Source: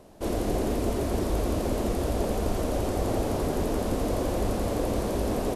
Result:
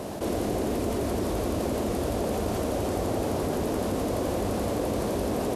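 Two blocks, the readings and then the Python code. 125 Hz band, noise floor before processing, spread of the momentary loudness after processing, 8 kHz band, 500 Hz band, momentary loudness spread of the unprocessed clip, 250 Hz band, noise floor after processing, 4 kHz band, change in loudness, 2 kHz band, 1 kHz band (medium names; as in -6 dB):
-1.5 dB, -30 dBFS, 0 LU, +0.5 dB, +0.5 dB, 1 LU, +0.5 dB, -29 dBFS, +0.5 dB, 0.0 dB, +0.5 dB, +0.5 dB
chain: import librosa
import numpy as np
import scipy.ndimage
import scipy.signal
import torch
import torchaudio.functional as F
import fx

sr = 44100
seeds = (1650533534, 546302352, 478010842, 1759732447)

y = scipy.signal.sosfilt(scipy.signal.butter(2, 75.0, 'highpass', fs=sr, output='sos'), x)
y = fx.env_flatten(y, sr, amount_pct=70)
y = y * librosa.db_to_amplitude(-1.5)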